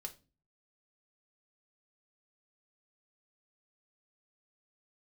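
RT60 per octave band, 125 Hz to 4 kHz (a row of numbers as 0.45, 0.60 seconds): 0.65, 0.55, 0.35, 0.25, 0.25, 0.25 seconds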